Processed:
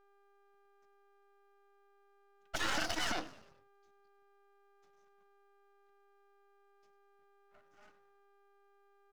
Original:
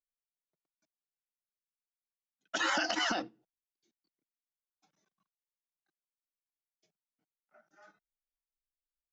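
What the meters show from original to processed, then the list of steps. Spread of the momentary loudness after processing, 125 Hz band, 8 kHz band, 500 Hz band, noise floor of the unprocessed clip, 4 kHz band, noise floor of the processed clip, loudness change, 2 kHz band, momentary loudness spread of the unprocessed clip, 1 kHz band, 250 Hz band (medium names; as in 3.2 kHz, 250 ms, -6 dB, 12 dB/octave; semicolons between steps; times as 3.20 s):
10 LU, +5.0 dB, -2.0 dB, -4.5 dB, under -85 dBFS, -4.0 dB, -68 dBFS, -5.0 dB, -5.0 dB, 10 LU, -5.0 dB, -5.0 dB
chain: frequency-shifting echo 100 ms, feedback 51%, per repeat -47 Hz, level -17.5 dB; mains buzz 400 Hz, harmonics 3, -65 dBFS -3 dB/octave; half-wave rectifier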